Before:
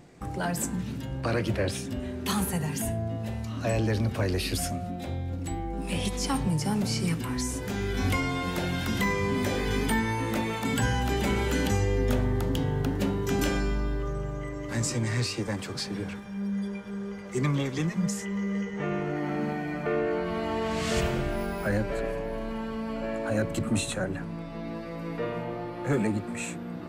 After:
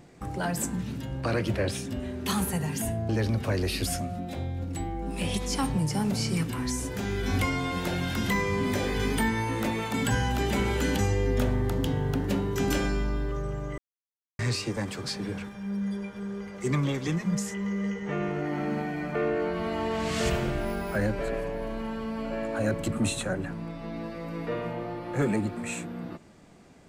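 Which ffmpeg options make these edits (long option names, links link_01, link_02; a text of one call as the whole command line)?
ffmpeg -i in.wav -filter_complex "[0:a]asplit=4[link_01][link_02][link_03][link_04];[link_01]atrim=end=3.092[link_05];[link_02]atrim=start=3.798:end=14.49,asetpts=PTS-STARTPTS,afade=type=out:start_time=10.688:duration=0.004:curve=hsin[link_06];[link_03]atrim=start=14.49:end=15.1,asetpts=PTS-STARTPTS,volume=0[link_07];[link_04]atrim=start=15.1,asetpts=PTS-STARTPTS,afade=type=in:duration=0.004:curve=hsin[link_08];[link_06][link_07][link_08]concat=n=3:v=0:a=1[link_09];[link_05][link_09]acrossfade=duration=0.004:curve1=hsin:curve2=hsin" out.wav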